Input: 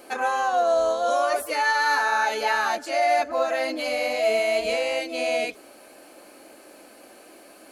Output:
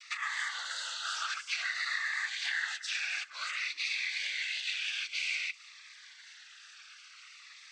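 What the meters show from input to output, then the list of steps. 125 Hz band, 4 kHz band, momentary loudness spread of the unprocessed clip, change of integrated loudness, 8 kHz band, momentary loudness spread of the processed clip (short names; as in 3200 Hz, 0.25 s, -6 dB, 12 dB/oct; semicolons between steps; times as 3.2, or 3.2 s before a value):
n/a, -1.5 dB, 5 LU, -10.0 dB, -4.5 dB, 19 LU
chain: elliptic band-pass 1600–6000 Hz, stop band 50 dB; compressor 6:1, threshold -36 dBFS, peak gain reduction 14.5 dB; noise vocoder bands 16; vibrato 2.9 Hz 36 cents; cascading phaser falling 0.54 Hz; gain +6.5 dB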